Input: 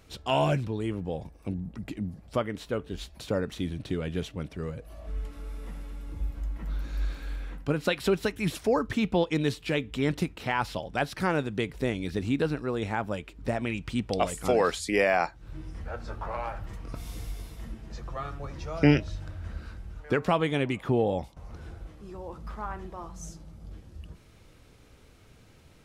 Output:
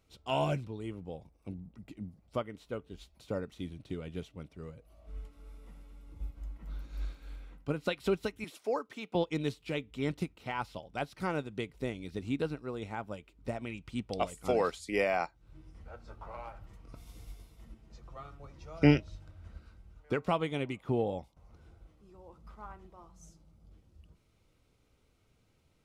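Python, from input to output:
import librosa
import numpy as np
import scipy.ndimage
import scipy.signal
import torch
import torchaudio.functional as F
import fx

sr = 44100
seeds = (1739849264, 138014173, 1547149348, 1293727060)

y = fx.highpass(x, sr, hz=370.0, slope=12, at=(8.44, 9.15))
y = fx.notch(y, sr, hz=1700.0, q=7.5)
y = fx.upward_expand(y, sr, threshold_db=-41.0, expansion=1.5)
y = F.gain(torch.from_numpy(y), -2.0).numpy()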